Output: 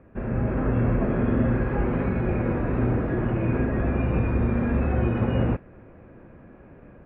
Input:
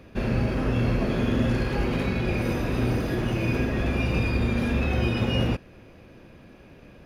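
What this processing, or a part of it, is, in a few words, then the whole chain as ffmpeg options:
action camera in a waterproof case: -af "lowpass=frequency=1800:width=0.5412,lowpass=frequency=1800:width=1.3066,dynaudnorm=framelen=260:gausssize=3:maxgain=5.5dB,volume=-4dB" -ar 22050 -c:a aac -b:a 48k

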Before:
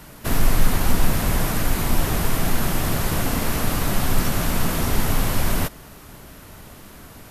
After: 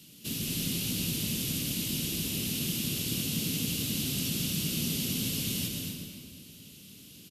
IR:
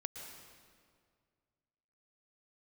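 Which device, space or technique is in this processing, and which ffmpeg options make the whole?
stadium PA: -filter_complex "[0:a]highpass=180,firequalizer=gain_entry='entry(200,0);entry(760,-27);entry(1800,-22);entry(2800,-1)':delay=0.05:min_phase=1,equalizer=frequency=3100:width_type=o:width=2.3:gain=4.5,aecho=1:1:224.5|259.5:0.355|0.355[link_01];[1:a]atrim=start_sample=2205[link_02];[link_01][link_02]afir=irnorm=-1:irlink=0,volume=-3dB"

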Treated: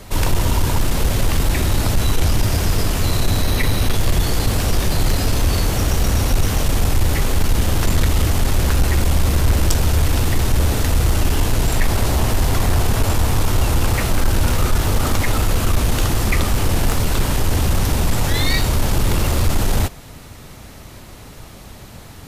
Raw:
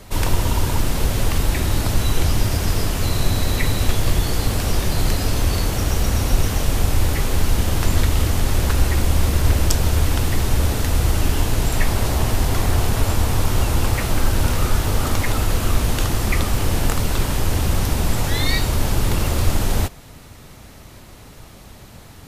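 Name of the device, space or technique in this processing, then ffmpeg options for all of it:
saturation between pre-emphasis and de-emphasis: -filter_complex "[0:a]highshelf=frequency=12000:gain=7,asoftclip=type=tanh:threshold=-11dB,highshelf=frequency=12000:gain=-7,asettb=1/sr,asplit=3[link_01][link_02][link_03];[link_01]atrim=end=3.424[link_04];[link_02]atrim=start=3.42:end=3.95,asetpts=PTS-STARTPTS,afade=type=in:duration=0.004:curve=qsin,afade=type=out:start_time=0.526:duration=0.004:curve=qsin,bandreject=frequency=7400:width=6.6[link_05];[link_03]atrim=start=3.946[link_06];[link_04][link_05]acrossfade=duration=0.004:curve1=hsin:curve2=qsin[link_07];[link_07][link_06]acrossfade=duration=0.004:curve1=qsin:curve2=hsin,volume=3.5dB"

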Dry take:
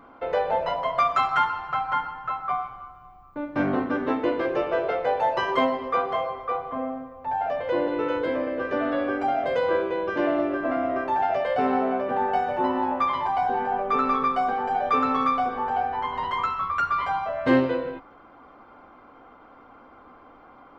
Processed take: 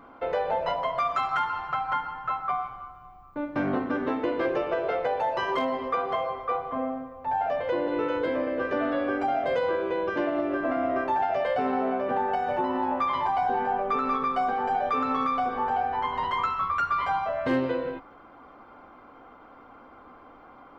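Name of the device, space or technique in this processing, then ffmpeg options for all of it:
clipper into limiter: -af "asoftclip=type=hard:threshold=-11.5dB,alimiter=limit=-17.5dB:level=0:latency=1:release=157"

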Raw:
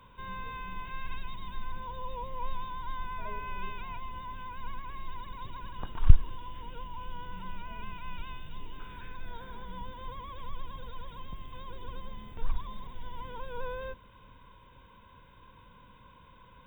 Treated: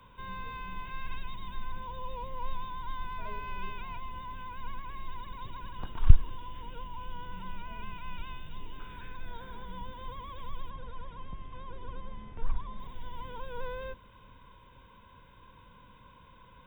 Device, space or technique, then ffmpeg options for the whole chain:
one-band saturation: -filter_complex "[0:a]asettb=1/sr,asplit=3[link_01][link_02][link_03];[link_01]atrim=end=10.704[link_04];[link_02]atrim=start=10.7:end=12.8,asetpts=PTS-STARTPTS,afade=type=in:duration=0.004:curve=qsin,afade=type=out:start_time=2.096:duration=0.004:curve=qsin,lowpass=2500[link_05];[link_03]atrim=start=12.796[link_06];[link_04][link_05]acrossfade=duration=0.004:curve1=hsin:curve2=qsin[link_07];[link_07][link_06]acrossfade=duration=0.004:curve1=qsin:curve2=hsin,acrossover=split=380|2100[link_08][link_09][link_10];[link_09]asoftclip=type=tanh:threshold=-35dB[link_11];[link_08][link_11][link_10]amix=inputs=3:normalize=0"

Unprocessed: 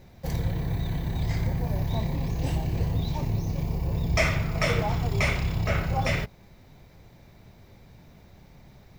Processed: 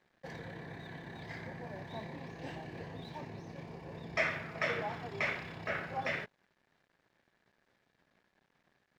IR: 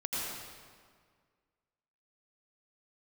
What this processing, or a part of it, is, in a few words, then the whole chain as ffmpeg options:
pocket radio on a weak battery: -af "highpass=250,lowpass=3800,aeval=exprs='sgn(val(0))*max(abs(val(0))-0.00141,0)':channel_layout=same,equalizer=frequency=1700:width_type=o:width=0.3:gain=10,volume=-8dB"

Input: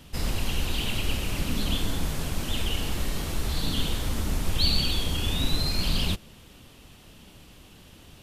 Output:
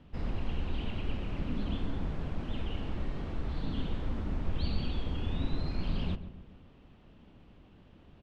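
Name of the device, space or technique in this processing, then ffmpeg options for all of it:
phone in a pocket: -filter_complex "[0:a]lowpass=3200,equalizer=frequency=240:width_type=o:width=0.77:gain=2,highshelf=frequency=2200:gain=-11.5,asplit=2[link_01][link_02];[link_02]adelay=137,lowpass=frequency=1500:poles=1,volume=-12dB,asplit=2[link_03][link_04];[link_04]adelay=137,lowpass=frequency=1500:poles=1,volume=0.5,asplit=2[link_05][link_06];[link_06]adelay=137,lowpass=frequency=1500:poles=1,volume=0.5,asplit=2[link_07][link_08];[link_08]adelay=137,lowpass=frequency=1500:poles=1,volume=0.5,asplit=2[link_09][link_10];[link_10]adelay=137,lowpass=frequency=1500:poles=1,volume=0.5[link_11];[link_01][link_03][link_05][link_07][link_09][link_11]amix=inputs=6:normalize=0,volume=-6dB"

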